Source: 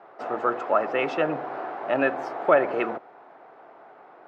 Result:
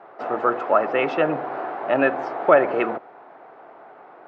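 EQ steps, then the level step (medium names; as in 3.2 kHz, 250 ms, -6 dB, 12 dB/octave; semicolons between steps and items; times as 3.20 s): Bessel low-pass 3.9 kHz, order 2; +4.0 dB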